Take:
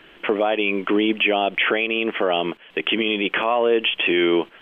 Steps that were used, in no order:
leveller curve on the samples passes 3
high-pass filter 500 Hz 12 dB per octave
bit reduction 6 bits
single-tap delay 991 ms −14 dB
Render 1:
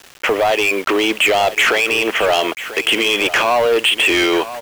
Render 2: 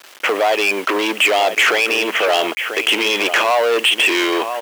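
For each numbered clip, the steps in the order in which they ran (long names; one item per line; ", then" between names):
high-pass filter, then leveller curve on the samples, then single-tap delay, then bit reduction
single-tap delay, then leveller curve on the samples, then bit reduction, then high-pass filter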